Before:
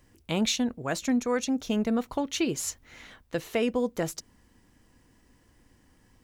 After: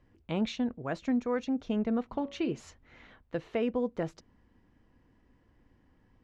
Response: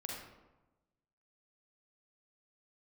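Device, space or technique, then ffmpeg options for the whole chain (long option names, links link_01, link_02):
phone in a pocket: -filter_complex "[0:a]lowpass=3700,highshelf=frequency=2100:gain=-8,asplit=3[link_01][link_02][link_03];[link_01]afade=type=out:start_time=2.11:duration=0.02[link_04];[link_02]bandreject=frequency=112.4:width_type=h:width=4,bandreject=frequency=224.8:width_type=h:width=4,bandreject=frequency=337.2:width_type=h:width=4,bandreject=frequency=449.6:width_type=h:width=4,bandreject=frequency=562:width_type=h:width=4,bandreject=frequency=674.4:width_type=h:width=4,bandreject=frequency=786.8:width_type=h:width=4,bandreject=frequency=899.2:width_type=h:width=4,bandreject=frequency=1011.6:width_type=h:width=4,bandreject=frequency=1124:width_type=h:width=4,bandreject=frequency=1236.4:width_type=h:width=4,bandreject=frequency=1348.8:width_type=h:width=4,bandreject=frequency=1461.2:width_type=h:width=4,bandreject=frequency=1573.6:width_type=h:width=4,bandreject=frequency=1686:width_type=h:width=4,bandreject=frequency=1798.4:width_type=h:width=4,bandreject=frequency=1910.8:width_type=h:width=4,bandreject=frequency=2023.2:width_type=h:width=4,bandreject=frequency=2135.6:width_type=h:width=4,bandreject=frequency=2248:width_type=h:width=4,bandreject=frequency=2360.4:width_type=h:width=4,bandreject=frequency=2472.8:width_type=h:width=4,bandreject=frequency=2585.2:width_type=h:width=4,bandreject=frequency=2697.6:width_type=h:width=4,bandreject=frequency=2810:width_type=h:width=4,bandreject=frequency=2922.4:width_type=h:width=4,bandreject=frequency=3034.8:width_type=h:width=4,afade=type=in:start_time=2.11:duration=0.02,afade=type=out:start_time=2.59:duration=0.02[link_05];[link_03]afade=type=in:start_time=2.59:duration=0.02[link_06];[link_04][link_05][link_06]amix=inputs=3:normalize=0,volume=-3dB"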